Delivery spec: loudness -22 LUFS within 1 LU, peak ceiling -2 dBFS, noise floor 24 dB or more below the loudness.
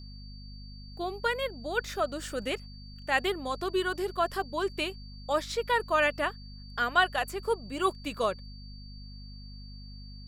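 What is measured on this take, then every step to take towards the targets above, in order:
hum 50 Hz; harmonics up to 250 Hz; hum level -43 dBFS; steady tone 4600 Hz; tone level -51 dBFS; loudness -30.5 LUFS; peak -11.0 dBFS; loudness target -22.0 LUFS
-> de-hum 50 Hz, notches 5; notch 4600 Hz, Q 30; gain +8.5 dB

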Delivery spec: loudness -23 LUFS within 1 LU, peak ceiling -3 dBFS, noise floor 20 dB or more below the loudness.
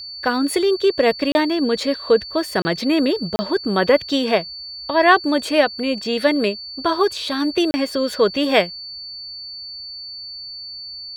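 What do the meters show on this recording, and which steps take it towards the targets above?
dropouts 4; longest dropout 30 ms; steady tone 4500 Hz; tone level -31 dBFS; loudness -19.0 LUFS; peak -2.0 dBFS; loudness target -23.0 LUFS
-> interpolate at 1.32/2.62/3.36/7.71, 30 ms; notch 4500 Hz, Q 30; gain -4 dB

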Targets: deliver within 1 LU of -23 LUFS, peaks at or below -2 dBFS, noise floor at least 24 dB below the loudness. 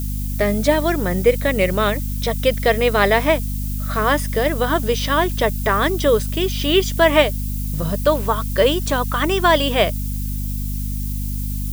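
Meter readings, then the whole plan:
hum 50 Hz; harmonics up to 250 Hz; hum level -22 dBFS; noise floor -24 dBFS; noise floor target -43 dBFS; loudness -19.0 LUFS; peak -1.0 dBFS; loudness target -23.0 LUFS
-> notches 50/100/150/200/250 Hz; denoiser 19 dB, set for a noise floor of -24 dBFS; gain -4 dB

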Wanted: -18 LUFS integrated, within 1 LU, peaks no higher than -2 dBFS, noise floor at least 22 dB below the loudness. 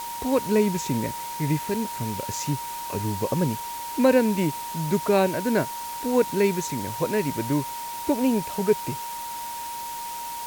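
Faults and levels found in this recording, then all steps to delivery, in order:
steady tone 940 Hz; tone level -32 dBFS; noise floor -34 dBFS; noise floor target -48 dBFS; loudness -25.5 LUFS; peak -7.5 dBFS; loudness target -18.0 LUFS
-> notch 940 Hz, Q 30; denoiser 14 dB, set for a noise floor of -34 dBFS; gain +7.5 dB; limiter -2 dBFS

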